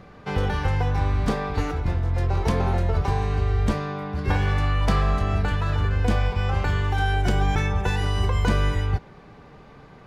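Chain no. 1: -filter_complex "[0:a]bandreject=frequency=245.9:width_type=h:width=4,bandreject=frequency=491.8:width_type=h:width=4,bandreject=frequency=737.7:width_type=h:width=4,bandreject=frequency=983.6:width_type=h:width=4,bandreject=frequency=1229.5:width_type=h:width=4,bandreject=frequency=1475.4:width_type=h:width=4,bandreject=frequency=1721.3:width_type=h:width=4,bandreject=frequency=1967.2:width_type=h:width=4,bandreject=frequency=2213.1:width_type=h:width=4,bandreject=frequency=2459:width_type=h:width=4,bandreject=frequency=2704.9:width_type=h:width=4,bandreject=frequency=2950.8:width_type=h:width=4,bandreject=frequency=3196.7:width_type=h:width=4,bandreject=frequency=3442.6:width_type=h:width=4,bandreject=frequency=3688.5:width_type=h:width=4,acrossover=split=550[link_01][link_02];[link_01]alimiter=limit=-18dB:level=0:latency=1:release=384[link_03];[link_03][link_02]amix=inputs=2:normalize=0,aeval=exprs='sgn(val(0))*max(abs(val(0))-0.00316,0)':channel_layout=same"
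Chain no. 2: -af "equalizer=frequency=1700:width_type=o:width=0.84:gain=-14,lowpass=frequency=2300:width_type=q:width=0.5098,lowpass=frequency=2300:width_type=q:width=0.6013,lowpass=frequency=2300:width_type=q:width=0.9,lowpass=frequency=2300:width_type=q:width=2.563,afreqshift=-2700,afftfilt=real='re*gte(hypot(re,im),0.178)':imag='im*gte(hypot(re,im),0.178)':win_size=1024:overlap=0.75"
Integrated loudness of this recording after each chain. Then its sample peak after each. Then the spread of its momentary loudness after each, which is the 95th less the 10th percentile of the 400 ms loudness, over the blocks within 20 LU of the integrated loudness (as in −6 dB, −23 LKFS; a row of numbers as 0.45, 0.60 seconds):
−27.0, −19.5 LKFS; −12.0, −9.0 dBFS; 4, 5 LU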